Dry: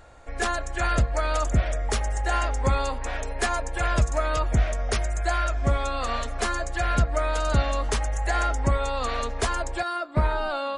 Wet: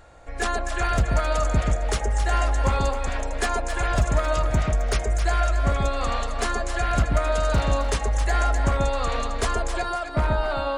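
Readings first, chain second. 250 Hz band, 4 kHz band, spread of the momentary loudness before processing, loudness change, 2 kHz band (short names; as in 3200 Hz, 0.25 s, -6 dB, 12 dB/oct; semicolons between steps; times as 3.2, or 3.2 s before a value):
+2.0 dB, +1.0 dB, 4 LU, +1.5 dB, +1.0 dB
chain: one-sided fold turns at -16 dBFS; echo with dull and thin repeats by turns 0.133 s, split 830 Hz, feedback 56%, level -2.5 dB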